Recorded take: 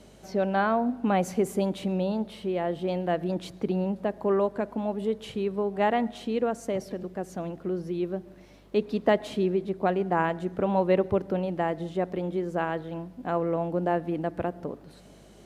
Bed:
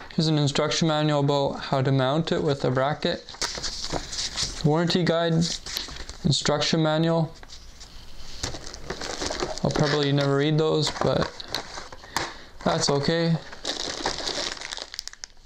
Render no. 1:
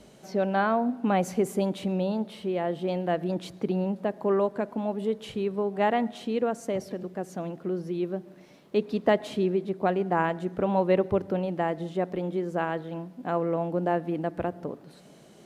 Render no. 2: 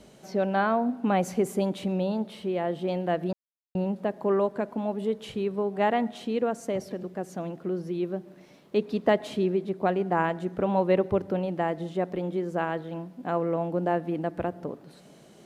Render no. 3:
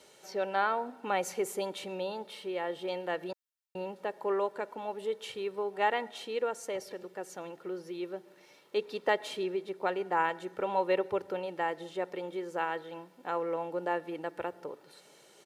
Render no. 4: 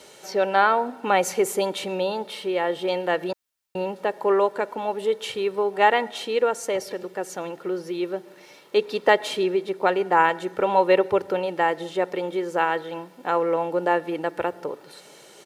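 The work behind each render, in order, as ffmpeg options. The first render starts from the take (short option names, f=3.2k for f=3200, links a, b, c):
-af "bandreject=f=50:t=h:w=4,bandreject=f=100:t=h:w=4"
-filter_complex "[0:a]asplit=3[a][b][c];[a]atrim=end=3.33,asetpts=PTS-STARTPTS,afade=t=out:st=3.326:d=0.004:c=hsin[d];[b]atrim=start=3.33:end=3.75,asetpts=PTS-STARTPTS,volume=0[e];[c]atrim=start=3.75,asetpts=PTS-STARTPTS,afade=t=in:d=0.004:c=hsin[f];[d][e][f]concat=n=3:v=0:a=1"
-af "highpass=f=1k:p=1,aecho=1:1:2.2:0.49"
-af "volume=10.5dB"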